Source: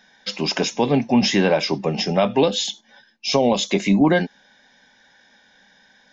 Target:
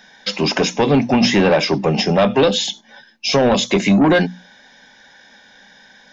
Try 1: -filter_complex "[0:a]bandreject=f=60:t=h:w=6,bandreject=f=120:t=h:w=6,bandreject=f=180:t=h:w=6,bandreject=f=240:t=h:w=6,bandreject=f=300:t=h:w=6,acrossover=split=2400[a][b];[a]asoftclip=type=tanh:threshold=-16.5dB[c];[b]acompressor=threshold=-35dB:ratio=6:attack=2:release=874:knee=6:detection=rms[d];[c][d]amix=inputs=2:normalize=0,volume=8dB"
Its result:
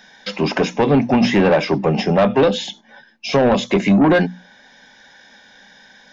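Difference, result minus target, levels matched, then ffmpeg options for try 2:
compressor: peak gain reduction +10 dB
-filter_complex "[0:a]bandreject=f=60:t=h:w=6,bandreject=f=120:t=h:w=6,bandreject=f=180:t=h:w=6,bandreject=f=240:t=h:w=6,bandreject=f=300:t=h:w=6,acrossover=split=2400[a][b];[a]asoftclip=type=tanh:threshold=-16.5dB[c];[b]acompressor=threshold=-23dB:ratio=6:attack=2:release=874:knee=6:detection=rms[d];[c][d]amix=inputs=2:normalize=0,volume=8dB"

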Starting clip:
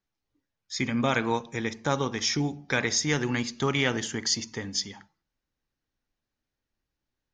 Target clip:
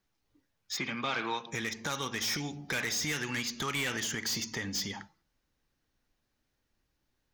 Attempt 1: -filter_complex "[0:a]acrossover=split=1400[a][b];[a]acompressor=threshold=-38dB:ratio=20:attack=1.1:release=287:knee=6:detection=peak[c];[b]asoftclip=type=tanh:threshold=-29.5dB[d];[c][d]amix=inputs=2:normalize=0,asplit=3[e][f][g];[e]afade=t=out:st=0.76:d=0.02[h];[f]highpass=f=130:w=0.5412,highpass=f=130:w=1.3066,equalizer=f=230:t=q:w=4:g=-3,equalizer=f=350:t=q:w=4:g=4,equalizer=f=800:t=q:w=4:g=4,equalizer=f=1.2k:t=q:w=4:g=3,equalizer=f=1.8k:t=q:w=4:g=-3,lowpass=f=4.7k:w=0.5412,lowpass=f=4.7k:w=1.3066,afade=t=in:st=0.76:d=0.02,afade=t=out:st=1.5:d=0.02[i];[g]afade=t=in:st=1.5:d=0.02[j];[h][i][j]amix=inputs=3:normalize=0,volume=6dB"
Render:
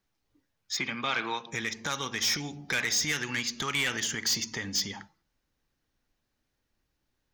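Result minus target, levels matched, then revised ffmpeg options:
soft clip: distortion -4 dB
-filter_complex "[0:a]acrossover=split=1400[a][b];[a]acompressor=threshold=-38dB:ratio=20:attack=1.1:release=287:knee=6:detection=peak[c];[b]asoftclip=type=tanh:threshold=-37dB[d];[c][d]amix=inputs=2:normalize=0,asplit=3[e][f][g];[e]afade=t=out:st=0.76:d=0.02[h];[f]highpass=f=130:w=0.5412,highpass=f=130:w=1.3066,equalizer=f=230:t=q:w=4:g=-3,equalizer=f=350:t=q:w=4:g=4,equalizer=f=800:t=q:w=4:g=4,equalizer=f=1.2k:t=q:w=4:g=3,equalizer=f=1.8k:t=q:w=4:g=-3,lowpass=f=4.7k:w=0.5412,lowpass=f=4.7k:w=1.3066,afade=t=in:st=0.76:d=0.02,afade=t=out:st=1.5:d=0.02[i];[g]afade=t=in:st=1.5:d=0.02[j];[h][i][j]amix=inputs=3:normalize=0,volume=6dB"

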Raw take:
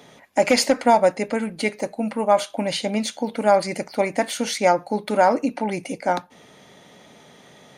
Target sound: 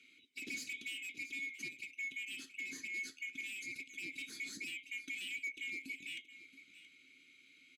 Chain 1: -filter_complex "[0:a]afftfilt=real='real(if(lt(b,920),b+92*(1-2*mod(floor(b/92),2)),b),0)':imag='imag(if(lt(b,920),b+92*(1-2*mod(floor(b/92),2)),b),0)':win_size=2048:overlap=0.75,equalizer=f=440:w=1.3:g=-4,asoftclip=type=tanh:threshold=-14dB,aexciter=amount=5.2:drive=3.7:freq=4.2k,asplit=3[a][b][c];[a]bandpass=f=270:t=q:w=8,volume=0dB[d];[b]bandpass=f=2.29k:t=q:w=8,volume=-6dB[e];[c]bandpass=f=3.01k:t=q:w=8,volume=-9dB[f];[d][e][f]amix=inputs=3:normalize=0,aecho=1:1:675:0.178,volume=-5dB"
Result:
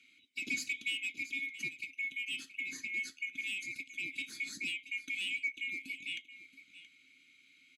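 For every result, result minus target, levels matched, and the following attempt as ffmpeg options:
500 Hz band -5.5 dB; soft clip: distortion -8 dB
-filter_complex "[0:a]afftfilt=real='real(if(lt(b,920),b+92*(1-2*mod(floor(b/92),2)),b),0)':imag='imag(if(lt(b,920),b+92*(1-2*mod(floor(b/92),2)),b),0)':win_size=2048:overlap=0.75,equalizer=f=440:w=1.3:g=3.5,asoftclip=type=tanh:threshold=-14dB,aexciter=amount=5.2:drive=3.7:freq=4.2k,asplit=3[a][b][c];[a]bandpass=f=270:t=q:w=8,volume=0dB[d];[b]bandpass=f=2.29k:t=q:w=8,volume=-6dB[e];[c]bandpass=f=3.01k:t=q:w=8,volume=-9dB[f];[d][e][f]amix=inputs=3:normalize=0,aecho=1:1:675:0.178,volume=-5dB"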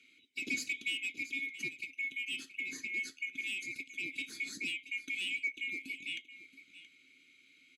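soft clip: distortion -8 dB
-filter_complex "[0:a]afftfilt=real='real(if(lt(b,920),b+92*(1-2*mod(floor(b/92),2)),b),0)':imag='imag(if(lt(b,920),b+92*(1-2*mod(floor(b/92),2)),b),0)':win_size=2048:overlap=0.75,equalizer=f=440:w=1.3:g=3.5,asoftclip=type=tanh:threshold=-25dB,aexciter=amount=5.2:drive=3.7:freq=4.2k,asplit=3[a][b][c];[a]bandpass=f=270:t=q:w=8,volume=0dB[d];[b]bandpass=f=2.29k:t=q:w=8,volume=-6dB[e];[c]bandpass=f=3.01k:t=q:w=8,volume=-9dB[f];[d][e][f]amix=inputs=3:normalize=0,aecho=1:1:675:0.178,volume=-5dB"

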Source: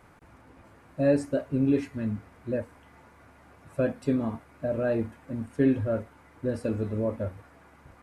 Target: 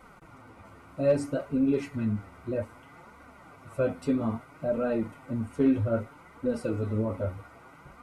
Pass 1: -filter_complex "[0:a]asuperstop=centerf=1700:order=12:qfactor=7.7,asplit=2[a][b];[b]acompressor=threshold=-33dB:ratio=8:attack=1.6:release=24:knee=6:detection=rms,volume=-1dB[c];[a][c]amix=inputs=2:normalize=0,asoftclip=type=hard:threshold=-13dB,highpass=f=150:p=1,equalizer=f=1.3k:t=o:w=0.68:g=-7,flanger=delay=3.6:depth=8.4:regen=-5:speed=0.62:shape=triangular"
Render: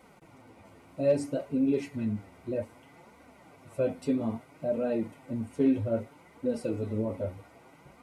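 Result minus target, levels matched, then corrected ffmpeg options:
1000 Hz band -3.0 dB; 125 Hz band -3.0 dB
-filter_complex "[0:a]asuperstop=centerf=1700:order=12:qfactor=7.7,asplit=2[a][b];[b]acompressor=threshold=-33dB:ratio=8:attack=1.6:release=24:knee=6:detection=rms,volume=-1dB[c];[a][c]amix=inputs=2:normalize=0,asoftclip=type=hard:threshold=-13dB,equalizer=f=1.3k:t=o:w=0.68:g=4.5,flanger=delay=3.6:depth=8.4:regen=-5:speed=0.62:shape=triangular"

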